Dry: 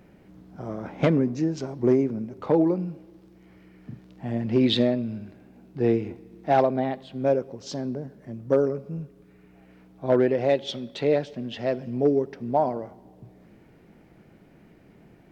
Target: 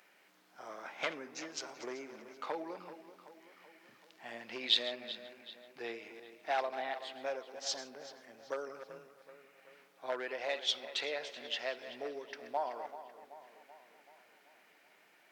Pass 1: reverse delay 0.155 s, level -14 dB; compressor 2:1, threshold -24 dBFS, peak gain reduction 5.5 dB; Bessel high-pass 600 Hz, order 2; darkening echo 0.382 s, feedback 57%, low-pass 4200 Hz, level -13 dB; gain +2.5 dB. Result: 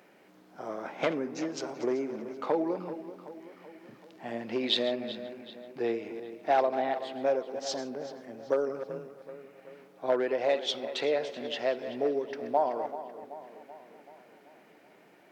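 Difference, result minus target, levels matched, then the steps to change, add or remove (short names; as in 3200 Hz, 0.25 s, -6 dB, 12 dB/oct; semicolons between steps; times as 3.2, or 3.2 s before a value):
2000 Hz band -5.5 dB
change: Bessel high-pass 1600 Hz, order 2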